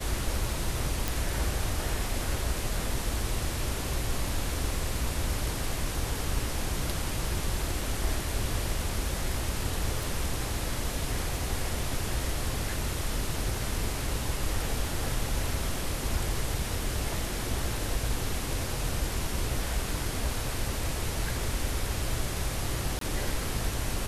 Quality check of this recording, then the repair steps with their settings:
1.08 s: pop
10.03 s: pop
22.99–23.01 s: dropout 23 ms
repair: de-click; interpolate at 22.99 s, 23 ms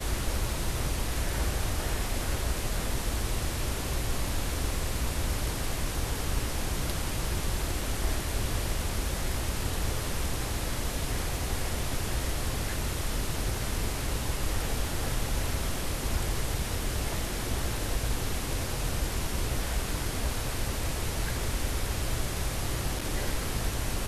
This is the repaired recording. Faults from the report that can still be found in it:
10.03 s: pop

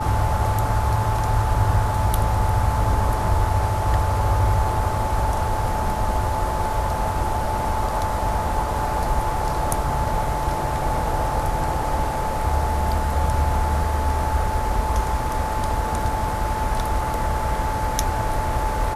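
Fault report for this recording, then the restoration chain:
whine 870 Hz -26 dBFS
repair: band-stop 870 Hz, Q 30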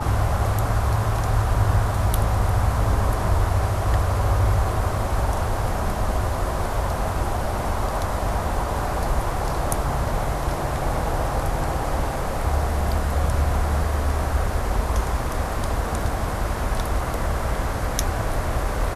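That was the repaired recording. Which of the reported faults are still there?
nothing left

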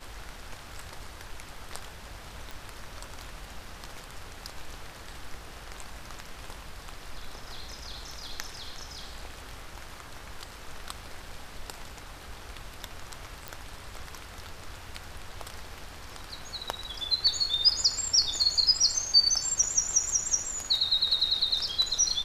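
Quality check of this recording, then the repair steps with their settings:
2.51 s: pop
13.48 s: pop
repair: de-click

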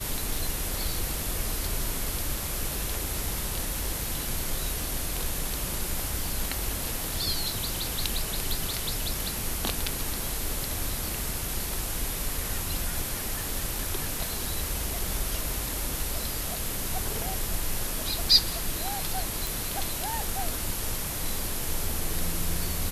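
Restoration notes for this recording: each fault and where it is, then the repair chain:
19.47 s: pop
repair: de-click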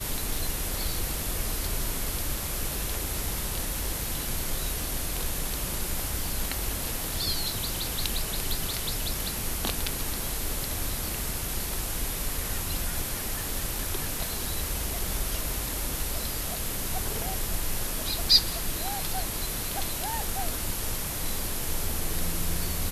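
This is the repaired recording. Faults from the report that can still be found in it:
nothing left

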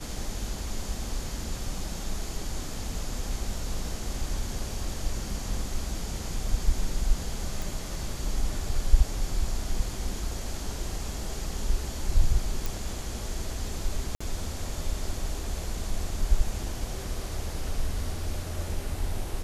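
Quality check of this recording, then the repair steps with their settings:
7.62 s: pop
12.66 s: pop
14.15–14.21 s: dropout 55 ms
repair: de-click; interpolate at 14.15 s, 55 ms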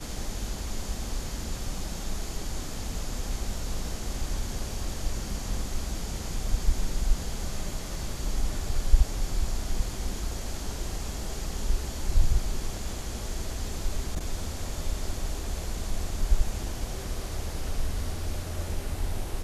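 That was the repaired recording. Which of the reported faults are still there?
nothing left

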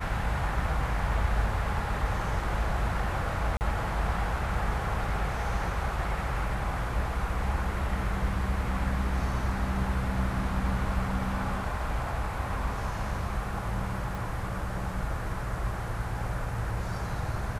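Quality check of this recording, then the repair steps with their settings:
3.57–3.61 s: dropout 39 ms
14.15 s: pop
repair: de-click; interpolate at 3.57 s, 39 ms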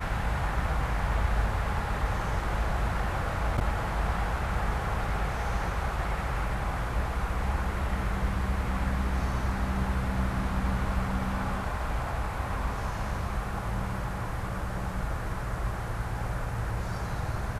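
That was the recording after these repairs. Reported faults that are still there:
nothing left

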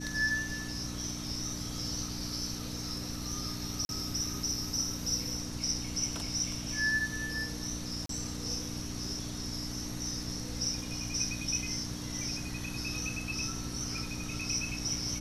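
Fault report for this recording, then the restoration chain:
hum 60 Hz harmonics 5 -41 dBFS
3.85–3.89 s: dropout 41 ms
8.06–8.09 s: dropout 33 ms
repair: de-hum 60 Hz, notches 5; interpolate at 3.85 s, 41 ms; interpolate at 8.06 s, 33 ms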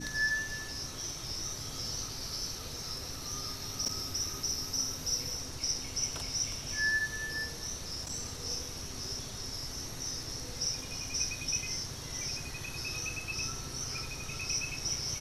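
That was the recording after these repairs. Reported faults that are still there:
nothing left

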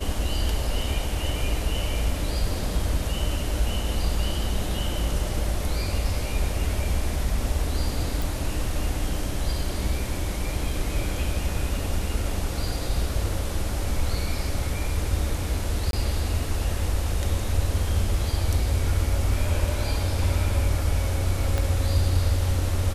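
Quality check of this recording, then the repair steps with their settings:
8.22 s: pop
15.91–15.93 s: dropout 22 ms
21.58 s: pop -13 dBFS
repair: de-click; interpolate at 15.91 s, 22 ms

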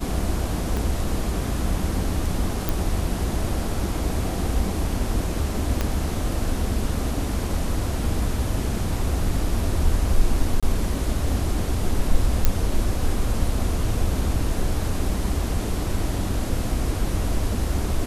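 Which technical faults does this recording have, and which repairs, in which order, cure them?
0.77 s: pop
2.69 s: pop
5.81 s: pop -9 dBFS
10.60–10.63 s: dropout 26 ms
12.45 s: pop -4 dBFS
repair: de-click; interpolate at 10.60 s, 26 ms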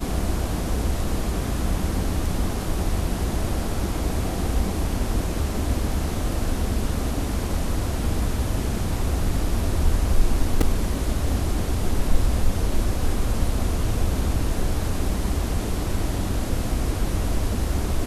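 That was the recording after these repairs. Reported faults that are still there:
0.77 s: pop
5.81 s: pop

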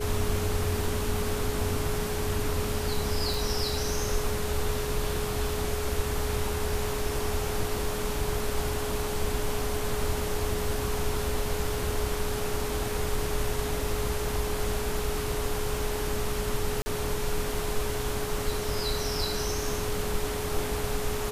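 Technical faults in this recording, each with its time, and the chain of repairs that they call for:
whine 420 Hz -33 dBFS
3.34 s: pop
16.82–16.86 s: dropout 40 ms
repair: de-click; band-stop 420 Hz, Q 30; interpolate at 16.82 s, 40 ms

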